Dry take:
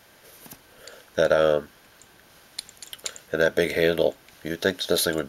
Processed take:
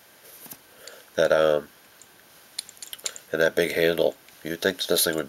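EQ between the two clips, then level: HPF 150 Hz 6 dB/oct; high shelf 8600 Hz +6 dB; 0.0 dB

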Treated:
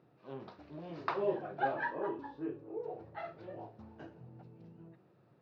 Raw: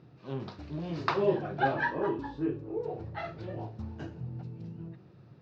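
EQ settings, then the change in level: HPF 430 Hz 6 dB/oct; LPF 1800 Hz 6 dB/oct; bell 610 Hz +2.5 dB; -4.0 dB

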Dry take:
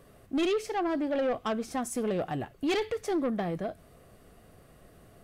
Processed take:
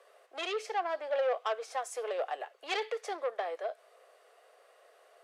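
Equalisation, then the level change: steep high-pass 460 Hz 48 dB/oct; air absorption 51 m; 0.0 dB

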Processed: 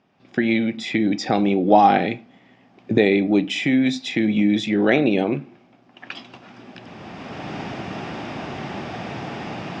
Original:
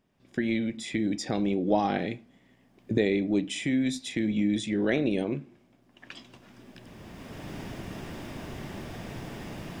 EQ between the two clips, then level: speaker cabinet 120–5700 Hz, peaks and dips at 780 Hz +8 dB, 1300 Hz +5 dB, 2500 Hz +4 dB; +8.0 dB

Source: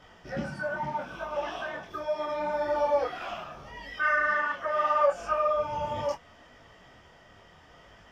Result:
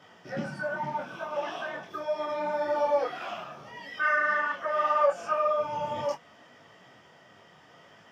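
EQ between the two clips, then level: HPF 120 Hz 24 dB/oct; 0.0 dB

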